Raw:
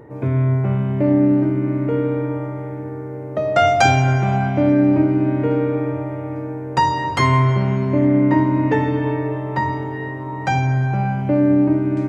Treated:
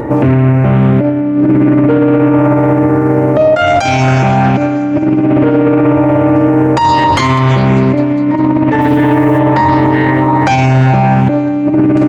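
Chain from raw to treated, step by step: comb 3.5 ms, depth 38%; negative-ratio compressor -20 dBFS, ratio -0.5; 8.8–9.38 added noise blue -55 dBFS; on a send: thinning echo 0.201 s, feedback 59%, high-pass 220 Hz, level -21.5 dB; on the sum: maximiser +21 dB; Doppler distortion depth 0.22 ms; gain -1 dB

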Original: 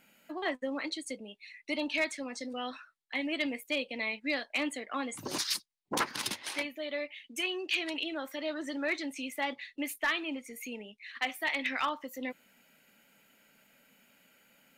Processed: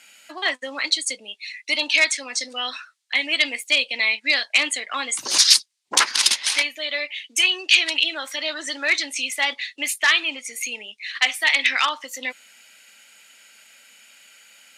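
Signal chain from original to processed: weighting filter ITU-R 468; gain +8 dB

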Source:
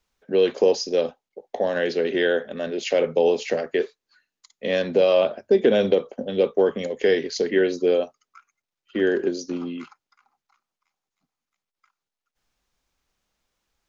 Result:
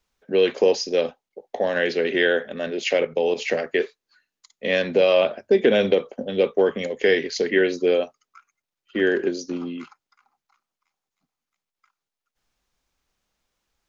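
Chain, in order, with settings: dynamic EQ 2200 Hz, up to +7 dB, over -42 dBFS, Q 1.3; 2.97–3.37 level quantiser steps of 10 dB

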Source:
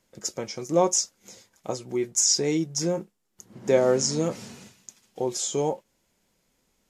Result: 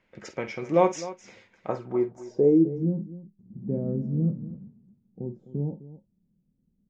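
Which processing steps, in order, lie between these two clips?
low-pass sweep 2300 Hz -> 190 Hz, 1.56–2.97; tapped delay 49/257 ms -12/-15.5 dB

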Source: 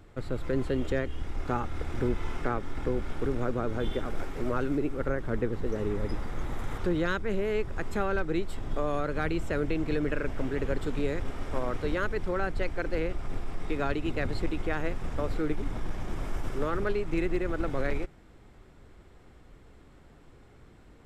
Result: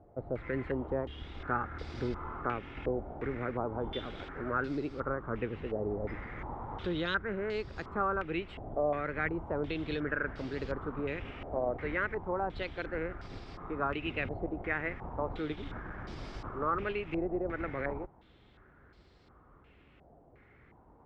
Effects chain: HPF 42 Hz; stepped low-pass 2.8 Hz 700–4600 Hz; gain -6 dB

